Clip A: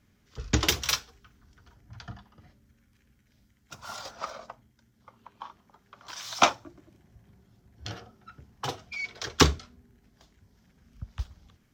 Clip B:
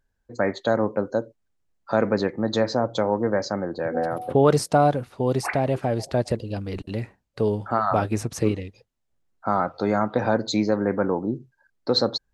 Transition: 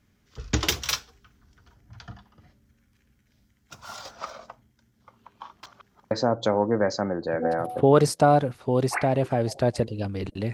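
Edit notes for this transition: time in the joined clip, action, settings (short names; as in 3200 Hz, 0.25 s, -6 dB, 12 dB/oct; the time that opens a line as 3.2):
clip A
5.63–6.11 reverse
6.11 switch to clip B from 2.63 s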